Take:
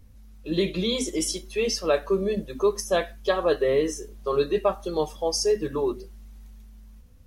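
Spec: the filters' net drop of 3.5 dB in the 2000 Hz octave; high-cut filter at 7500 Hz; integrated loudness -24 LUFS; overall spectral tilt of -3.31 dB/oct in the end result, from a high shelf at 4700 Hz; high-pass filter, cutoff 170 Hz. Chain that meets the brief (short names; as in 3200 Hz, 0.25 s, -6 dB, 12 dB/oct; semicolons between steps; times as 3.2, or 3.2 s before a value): HPF 170 Hz; LPF 7500 Hz; bell 2000 Hz -5.5 dB; high shelf 4700 Hz +5 dB; gain +2 dB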